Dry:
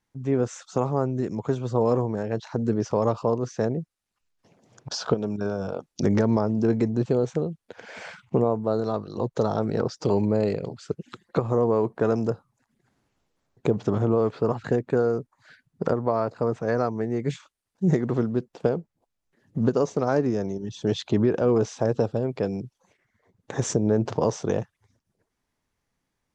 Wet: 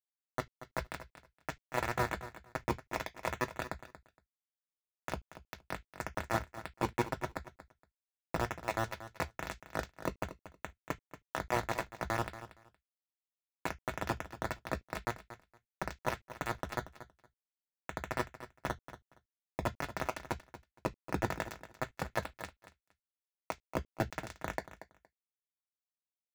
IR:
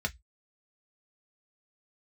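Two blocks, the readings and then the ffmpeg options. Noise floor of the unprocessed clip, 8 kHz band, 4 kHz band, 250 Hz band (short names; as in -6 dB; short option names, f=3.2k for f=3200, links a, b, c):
-81 dBFS, n/a, -7.0 dB, -19.0 dB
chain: -filter_complex "[0:a]lowpass=2k,equalizer=f=1k:w=3.4:g=13,bandreject=f=50:t=h:w=6,bandreject=f=100:t=h:w=6,bandreject=f=150:t=h:w=6,bandreject=f=200:t=h:w=6,bandreject=f=250:t=h:w=6,bandreject=f=300:t=h:w=6,bandreject=f=350:t=h:w=6,bandreject=f=400:t=h:w=6,alimiter=limit=-15.5dB:level=0:latency=1:release=37,acompressor=threshold=-38dB:ratio=2.5,flanger=delay=15:depth=2.9:speed=2.1,acrusher=bits=4:mix=0:aa=0.000001,aecho=1:1:233|466:0.2|0.0359,asplit=2[a][b];[1:a]atrim=start_sample=2205,atrim=end_sample=3528[c];[b][c]afir=irnorm=-1:irlink=0,volume=-3.5dB[d];[a][d]amix=inputs=2:normalize=0,volume=1.5dB"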